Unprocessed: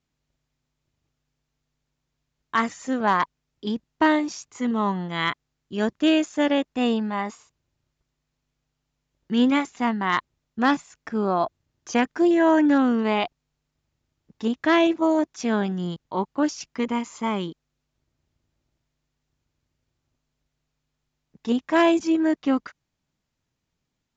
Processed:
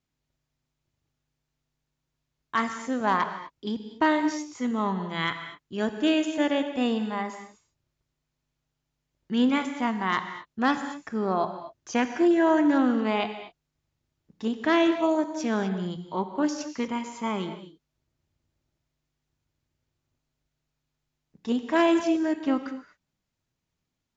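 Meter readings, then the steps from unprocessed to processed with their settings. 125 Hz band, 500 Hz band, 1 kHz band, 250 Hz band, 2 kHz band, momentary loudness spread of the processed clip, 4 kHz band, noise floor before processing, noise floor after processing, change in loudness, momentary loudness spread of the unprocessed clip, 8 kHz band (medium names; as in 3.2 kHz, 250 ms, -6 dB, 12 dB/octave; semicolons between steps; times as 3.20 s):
-3.0 dB, -2.5 dB, -3.0 dB, -3.0 dB, -3.0 dB, 12 LU, -3.0 dB, -80 dBFS, -83 dBFS, -3.0 dB, 11 LU, no reading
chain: gated-style reverb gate 270 ms flat, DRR 8 dB; trim -3.5 dB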